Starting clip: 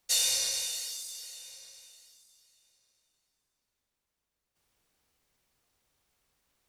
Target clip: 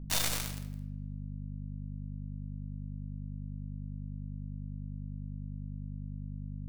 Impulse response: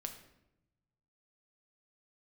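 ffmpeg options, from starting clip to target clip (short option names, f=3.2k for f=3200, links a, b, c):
-filter_complex "[0:a]acrossover=split=5200[a][b];[b]acompressor=threshold=-34dB:ratio=4:attack=1:release=60[c];[a][c]amix=inputs=2:normalize=0,asplit=2[d][e];[e]asoftclip=type=tanh:threshold=-32dB,volume=-9.5dB[f];[d][f]amix=inputs=2:normalize=0,aeval=exprs='0.178*(cos(1*acos(clip(val(0)/0.178,-1,1)))-cos(1*PI/2))+0.01*(cos(5*acos(clip(val(0)/0.178,-1,1)))-cos(5*PI/2))+0.00708*(cos(7*acos(clip(val(0)/0.178,-1,1)))-cos(7*PI/2))+0.0141*(cos(8*acos(clip(val(0)/0.178,-1,1)))-cos(8*PI/2))':c=same,acrusher=bits=2:mix=0:aa=0.5,aeval=exprs='val(0)+0.00178*(sin(2*PI*50*n/s)+sin(2*PI*2*50*n/s)/2+sin(2*PI*3*50*n/s)/3+sin(2*PI*4*50*n/s)/4+sin(2*PI*5*50*n/s)/5)':c=same[g];[1:a]atrim=start_sample=2205[h];[g][h]afir=irnorm=-1:irlink=0,volume=17.5dB"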